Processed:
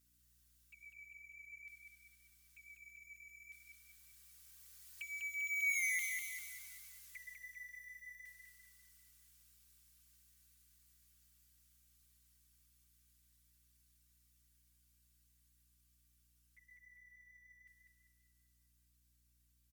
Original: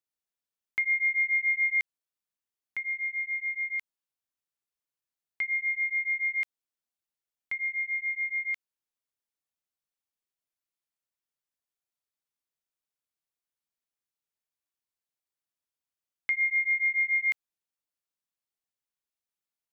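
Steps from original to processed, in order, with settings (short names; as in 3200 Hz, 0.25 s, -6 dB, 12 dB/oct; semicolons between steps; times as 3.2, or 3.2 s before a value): zero-crossing step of -36.5 dBFS; Doppler pass-by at 5.81, 25 m/s, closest 2.7 m; bell 2100 Hz -10 dB 2.8 oct; comb 2.6 ms, depth 48%; envelope flanger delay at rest 7.6 ms, full sweep at -52.5 dBFS; HPF 1400 Hz 24 dB/oct; hum 60 Hz, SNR 27 dB; on a send: feedback echo 0.198 s, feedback 47%, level -4 dB; on the sum: gain +10.5 dB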